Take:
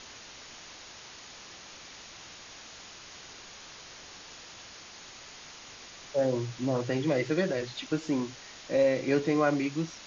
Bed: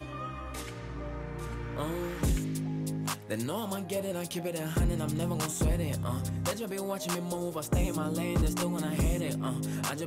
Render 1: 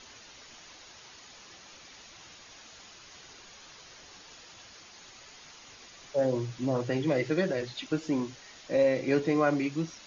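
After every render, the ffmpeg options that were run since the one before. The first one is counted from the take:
-af "afftdn=nr=6:nf=-48"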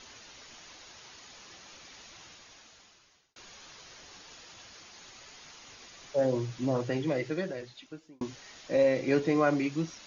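-filter_complex "[0:a]asplit=3[a][b][c];[a]atrim=end=3.36,asetpts=PTS-STARTPTS,afade=t=out:st=2.16:d=1.2[d];[b]atrim=start=3.36:end=8.21,asetpts=PTS-STARTPTS,afade=t=in:d=0.004:c=hsin,afade=t=out:st=3.35:d=1.5[e];[c]atrim=start=8.21,asetpts=PTS-STARTPTS,afade=t=in:d=0.004:c=hsin[f];[d][e][f]concat=n=3:v=0:a=1"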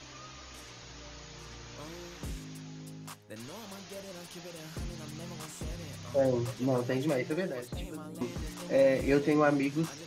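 -filter_complex "[1:a]volume=-12dB[a];[0:a][a]amix=inputs=2:normalize=0"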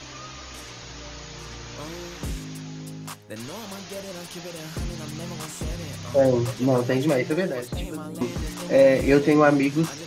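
-af "volume=8.5dB"

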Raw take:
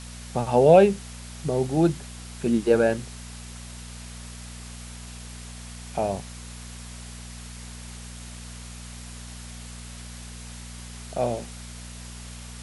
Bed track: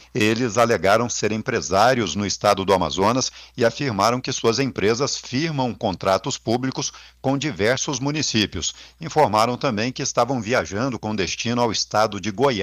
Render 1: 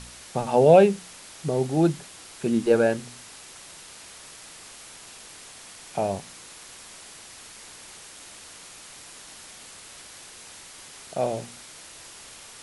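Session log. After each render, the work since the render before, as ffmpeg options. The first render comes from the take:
-af "bandreject=f=60:t=h:w=4,bandreject=f=120:t=h:w=4,bandreject=f=180:t=h:w=4,bandreject=f=240:t=h:w=4"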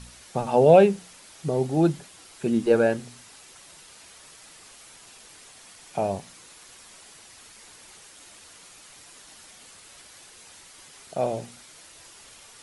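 -af "afftdn=nr=6:nf=-46"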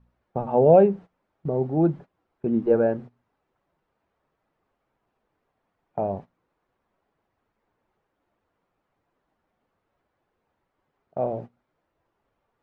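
-af "agate=range=-17dB:threshold=-36dB:ratio=16:detection=peak,lowpass=1k"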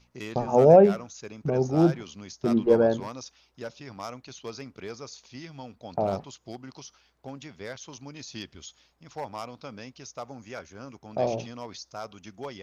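-filter_complex "[1:a]volume=-19.5dB[a];[0:a][a]amix=inputs=2:normalize=0"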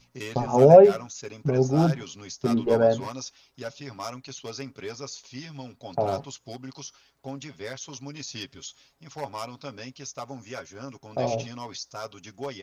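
-af "highshelf=f=4.2k:g=6,aecho=1:1:7.3:0.65"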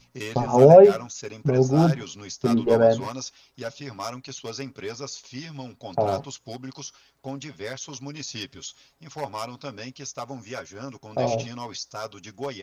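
-af "volume=2.5dB,alimiter=limit=-2dB:level=0:latency=1"

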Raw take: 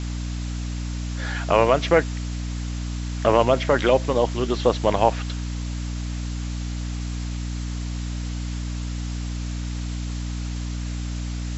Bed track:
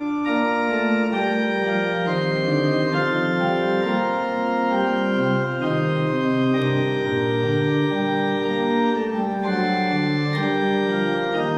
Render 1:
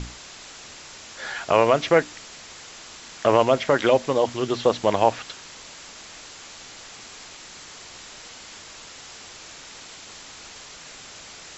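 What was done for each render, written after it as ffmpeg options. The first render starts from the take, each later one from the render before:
-af "bandreject=f=60:t=h:w=6,bandreject=f=120:t=h:w=6,bandreject=f=180:t=h:w=6,bandreject=f=240:t=h:w=6,bandreject=f=300:t=h:w=6"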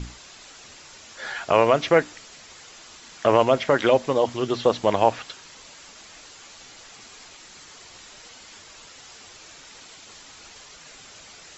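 -af "afftdn=nr=6:nf=-43"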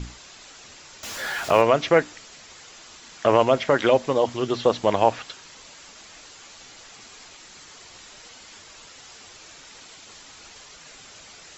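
-filter_complex "[0:a]asettb=1/sr,asplit=3[a][b][c];[a]atrim=end=1.034[d];[b]atrim=start=1.03:end=1.62,asetpts=PTS-STARTPTS,afade=t=in:d=0.004:c=qsin,afade=t=out:st=0.586:d=0.004:c=qsin,aeval=exprs='val(0)+0.5*0.0282*sgn(val(0))':c=same[e];[c]atrim=start=1.616[f];[d][e]acrossfade=d=0.004:c1=hsin:c2=qsin[g];[g][f]acrossfade=d=0.004:c1=qsin:c2=hsin"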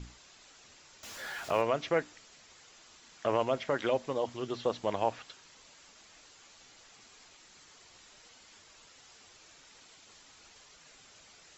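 -af "volume=-11.5dB"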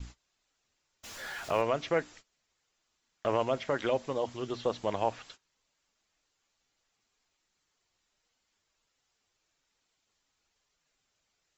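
-af "agate=range=-22dB:threshold=-50dB:ratio=16:detection=peak,lowshelf=f=61:g=8.5"

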